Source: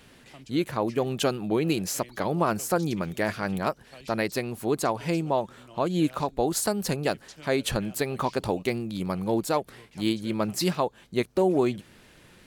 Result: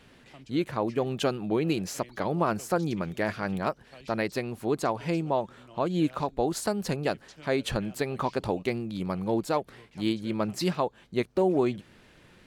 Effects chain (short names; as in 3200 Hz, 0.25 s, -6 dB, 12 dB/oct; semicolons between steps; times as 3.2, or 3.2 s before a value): high shelf 7300 Hz -11 dB; gain -1.5 dB